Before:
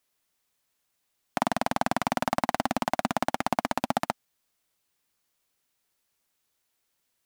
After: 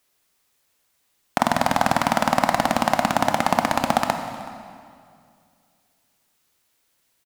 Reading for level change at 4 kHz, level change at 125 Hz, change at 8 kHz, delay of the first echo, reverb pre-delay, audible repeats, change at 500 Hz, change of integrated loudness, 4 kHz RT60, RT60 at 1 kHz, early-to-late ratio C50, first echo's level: +8.5 dB, +8.0 dB, +8.0 dB, 375 ms, 22 ms, 1, +7.5 dB, +7.5 dB, 1.8 s, 2.2 s, 6.5 dB, −21.5 dB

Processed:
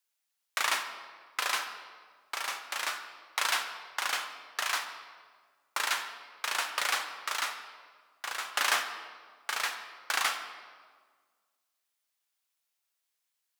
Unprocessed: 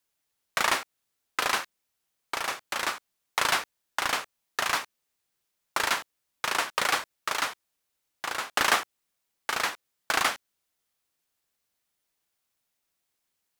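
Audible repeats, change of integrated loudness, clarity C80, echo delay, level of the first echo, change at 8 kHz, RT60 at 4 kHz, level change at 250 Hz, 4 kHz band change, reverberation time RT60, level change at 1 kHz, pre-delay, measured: no echo audible, −3.5 dB, 9.5 dB, no echo audible, no echo audible, −2.0 dB, 1.2 s, −13.5 dB, −2.0 dB, 1.6 s, −5.0 dB, 4 ms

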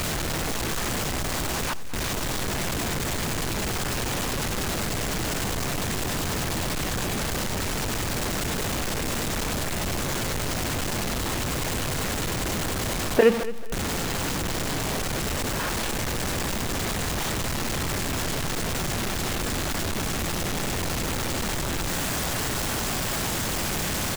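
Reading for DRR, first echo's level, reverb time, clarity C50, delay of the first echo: no reverb audible, −15.5 dB, no reverb audible, no reverb audible, 219 ms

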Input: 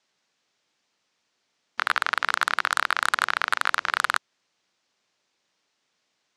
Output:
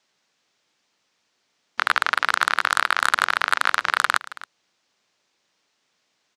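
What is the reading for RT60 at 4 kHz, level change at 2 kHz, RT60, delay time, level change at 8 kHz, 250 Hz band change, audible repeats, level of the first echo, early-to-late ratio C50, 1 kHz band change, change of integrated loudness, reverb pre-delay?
no reverb audible, +3.5 dB, no reverb audible, 273 ms, +3.5 dB, +3.5 dB, 1, −18.0 dB, no reverb audible, +3.5 dB, +3.5 dB, no reverb audible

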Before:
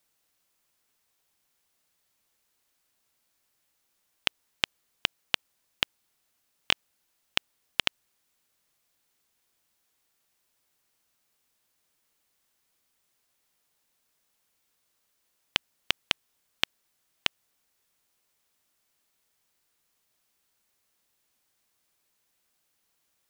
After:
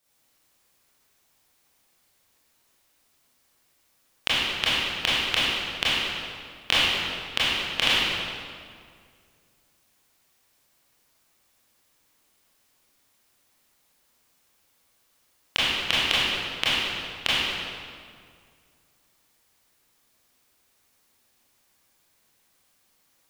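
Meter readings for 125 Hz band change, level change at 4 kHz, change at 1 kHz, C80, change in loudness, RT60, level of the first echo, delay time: +10.5 dB, +8.5 dB, +9.5 dB, −2.0 dB, +7.0 dB, 2.1 s, no echo audible, no echo audible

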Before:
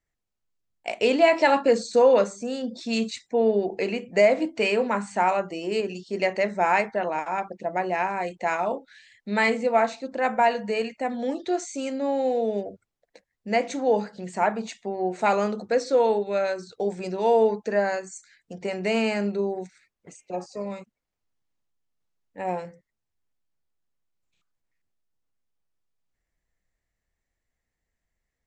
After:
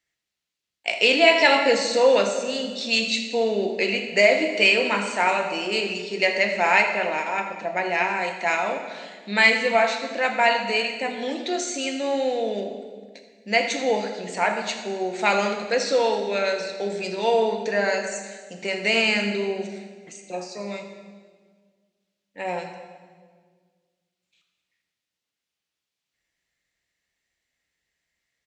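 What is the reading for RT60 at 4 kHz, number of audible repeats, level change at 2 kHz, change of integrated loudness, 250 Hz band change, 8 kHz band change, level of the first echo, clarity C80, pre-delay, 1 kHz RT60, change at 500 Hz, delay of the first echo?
1.4 s, 1, +8.5 dB, +2.5 dB, −1.0 dB, +7.5 dB, −14.0 dB, 7.5 dB, 3 ms, 1.5 s, 0.0 dB, 80 ms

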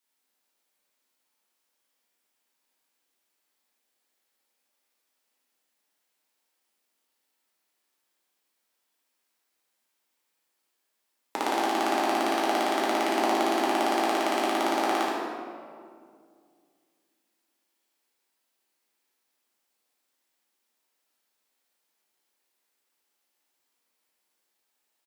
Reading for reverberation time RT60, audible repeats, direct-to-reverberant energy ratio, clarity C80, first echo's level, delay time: 2.1 s, 1, −6.5 dB, 0.0 dB, −4.0 dB, 75 ms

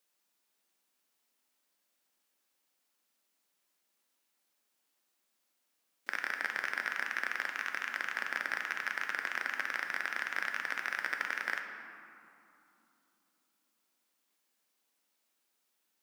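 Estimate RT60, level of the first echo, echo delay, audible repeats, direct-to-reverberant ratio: 3.0 s, no echo audible, no echo audible, no echo audible, 3.5 dB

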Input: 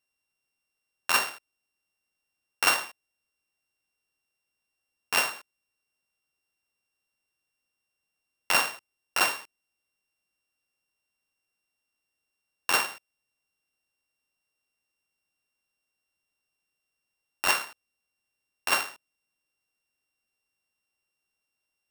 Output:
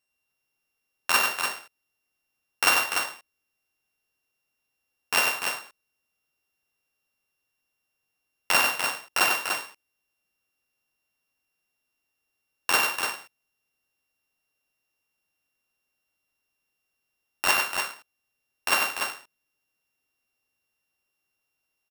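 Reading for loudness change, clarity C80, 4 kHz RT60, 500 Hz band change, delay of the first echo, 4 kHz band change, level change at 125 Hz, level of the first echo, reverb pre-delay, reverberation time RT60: +2.0 dB, no reverb audible, no reverb audible, +3.5 dB, 58 ms, +3.5 dB, +3.5 dB, −16.0 dB, no reverb audible, no reverb audible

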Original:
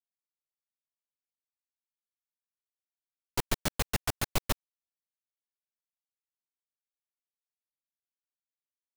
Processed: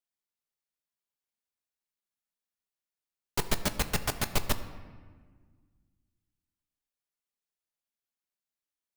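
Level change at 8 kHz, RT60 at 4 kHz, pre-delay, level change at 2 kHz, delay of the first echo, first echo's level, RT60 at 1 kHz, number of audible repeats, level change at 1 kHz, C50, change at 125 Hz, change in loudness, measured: +1.5 dB, 1.0 s, 5 ms, +1.5 dB, no echo audible, no echo audible, 1.5 s, no echo audible, +1.5 dB, 12.0 dB, +0.5 dB, +1.5 dB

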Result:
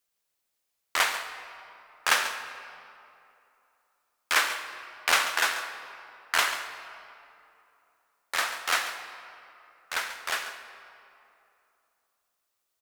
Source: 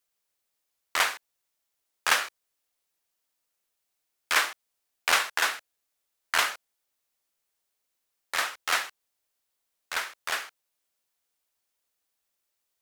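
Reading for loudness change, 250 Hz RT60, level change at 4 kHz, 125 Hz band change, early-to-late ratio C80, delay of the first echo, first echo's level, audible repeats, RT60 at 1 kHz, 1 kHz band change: −0.5 dB, 2.8 s, +0.5 dB, can't be measured, 8.0 dB, 139 ms, −12.0 dB, 1, 2.8 s, +1.0 dB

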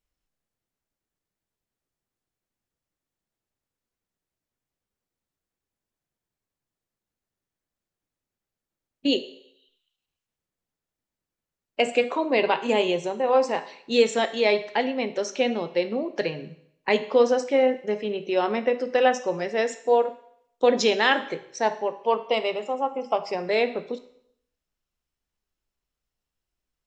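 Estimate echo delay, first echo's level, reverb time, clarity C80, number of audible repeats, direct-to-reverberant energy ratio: no echo audible, no echo audible, 0.70 s, 16.5 dB, no echo audible, 10.0 dB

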